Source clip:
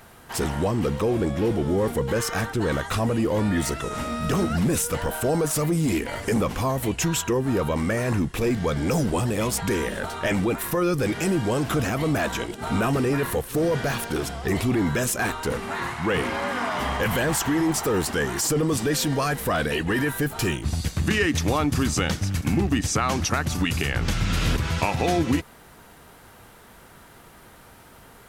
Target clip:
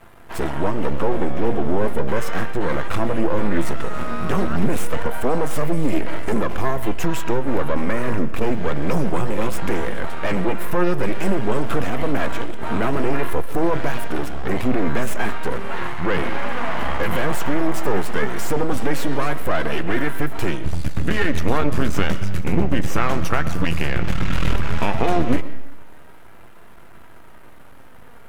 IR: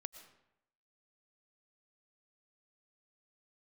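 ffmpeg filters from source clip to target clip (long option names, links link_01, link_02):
-filter_complex "[0:a]aeval=exprs='max(val(0),0)':channel_layout=same,asplit=2[link_01][link_02];[1:a]atrim=start_sample=2205,lowpass=3000[link_03];[link_02][link_03]afir=irnorm=-1:irlink=0,volume=8.5dB[link_04];[link_01][link_04]amix=inputs=2:normalize=0,flanger=delay=2.9:depth=3.1:regen=78:speed=0.15:shape=sinusoidal,volume=2dB"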